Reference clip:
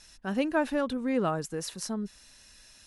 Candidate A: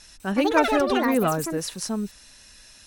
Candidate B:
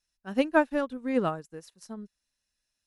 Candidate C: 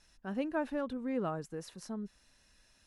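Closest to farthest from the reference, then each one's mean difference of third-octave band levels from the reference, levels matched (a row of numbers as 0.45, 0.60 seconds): C, A, B; 2.5, 4.5, 9.0 decibels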